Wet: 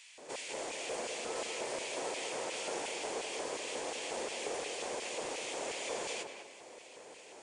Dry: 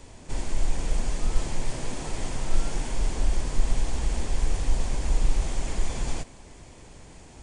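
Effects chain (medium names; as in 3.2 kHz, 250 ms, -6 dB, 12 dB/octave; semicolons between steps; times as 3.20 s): LFO high-pass square 2.8 Hz 480–2500 Hz; tape echo 197 ms, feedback 35%, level -3 dB, low-pass 1.6 kHz; trim -3 dB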